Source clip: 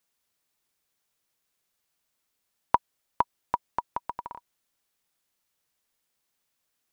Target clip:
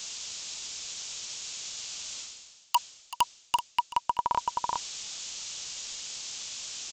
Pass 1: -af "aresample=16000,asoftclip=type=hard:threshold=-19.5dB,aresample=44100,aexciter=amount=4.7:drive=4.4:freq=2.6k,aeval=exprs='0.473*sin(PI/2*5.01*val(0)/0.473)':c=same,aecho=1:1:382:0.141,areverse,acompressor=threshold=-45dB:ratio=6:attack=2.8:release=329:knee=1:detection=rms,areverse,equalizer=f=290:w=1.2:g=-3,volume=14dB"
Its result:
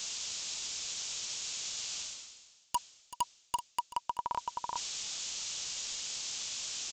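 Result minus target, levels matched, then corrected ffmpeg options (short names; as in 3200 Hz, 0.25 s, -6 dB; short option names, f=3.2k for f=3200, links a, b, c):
compressor: peak gain reduction +7.5 dB; hard clip: distortion +8 dB
-af "aresample=16000,asoftclip=type=hard:threshold=-11.5dB,aresample=44100,aexciter=amount=4.7:drive=4.4:freq=2.6k,aeval=exprs='0.473*sin(PI/2*5.01*val(0)/0.473)':c=same,aecho=1:1:382:0.141,areverse,acompressor=threshold=-36dB:ratio=6:attack=2.8:release=329:knee=1:detection=rms,areverse,equalizer=f=290:w=1.2:g=-3,volume=14dB"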